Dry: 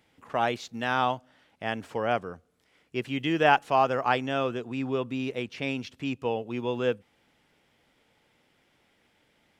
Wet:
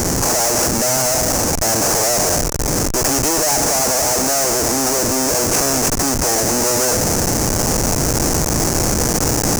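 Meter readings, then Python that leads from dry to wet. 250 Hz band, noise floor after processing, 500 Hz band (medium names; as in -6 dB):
+12.0 dB, -19 dBFS, +10.5 dB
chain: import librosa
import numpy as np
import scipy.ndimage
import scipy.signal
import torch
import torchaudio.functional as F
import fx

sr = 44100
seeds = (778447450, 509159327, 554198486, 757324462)

p1 = fx.bin_compress(x, sr, power=0.4)
p2 = fx.dynamic_eq(p1, sr, hz=620.0, q=5.0, threshold_db=-38.0, ratio=4.0, max_db=7)
p3 = fx.spec_gate(p2, sr, threshold_db=-20, keep='strong')
p4 = fx.tube_stage(p3, sr, drive_db=20.0, bias=0.7)
p5 = fx.highpass(p4, sr, hz=45.0, slope=6)
p6 = p5 + fx.echo_bbd(p5, sr, ms=98, stages=1024, feedback_pct=72, wet_db=-21.5, dry=0)
p7 = fx.schmitt(p6, sr, flips_db=-36.0)
p8 = fx.high_shelf_res(p7, sr, hz=4600.0, db=10.0, q=3.0)
p9 = fx.rider(p8, sr, range_db=10, speed_s=2.0)
p10 = p8 + (p9 * librosa.db_to_amplitude(2.0))
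y = p10 * librosa.db_to_amplitude(3.0)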